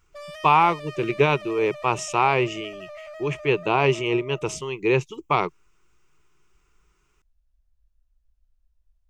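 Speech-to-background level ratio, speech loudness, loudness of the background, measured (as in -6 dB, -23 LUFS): 17.5 dB, -23.0 LUFS, -40.5 LUFS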